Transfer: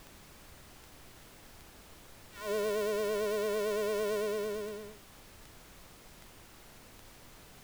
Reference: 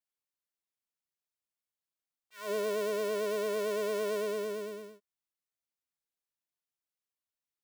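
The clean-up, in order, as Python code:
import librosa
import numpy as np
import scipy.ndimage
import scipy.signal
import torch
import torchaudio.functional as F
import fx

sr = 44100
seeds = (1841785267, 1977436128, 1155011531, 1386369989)

y = fx.fix_declick_ar(x, sr, threshold=10.0)
y = fx.noise_reduce(y, sr, print_start_s=6.43, print_end_s=6.93, reduce_db=30.0)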